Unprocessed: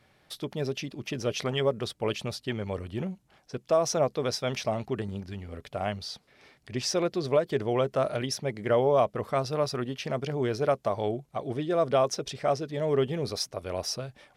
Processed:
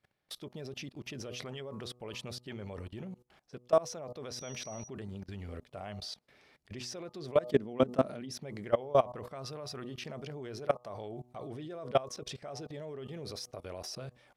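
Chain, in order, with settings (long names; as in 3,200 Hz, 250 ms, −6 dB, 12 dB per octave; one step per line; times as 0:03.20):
hum removal 122.7 Hz, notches 10
0:07.49–0:08.32: parametric band 230 Hz +13.5 dB 0.81 octaves
output level in coarse steps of 21 dB
0:04.30–0:04.87: steady tone 5,800 Hz −48 dBFS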